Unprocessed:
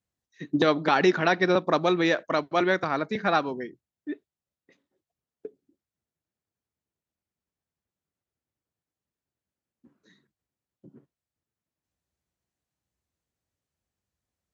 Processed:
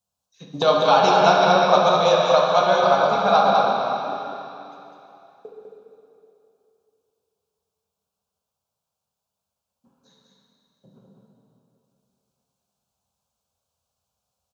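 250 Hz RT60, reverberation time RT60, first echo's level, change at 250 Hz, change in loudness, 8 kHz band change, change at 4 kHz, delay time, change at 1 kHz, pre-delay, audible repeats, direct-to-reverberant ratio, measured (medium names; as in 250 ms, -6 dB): 2.7 s, 2.9 s, -4.0 dB, -2.5 dB, +6.5 dB, no reading, +9.0 dB, 201 ms, +11.0 dB, 18 ms, 1, -4.0 dB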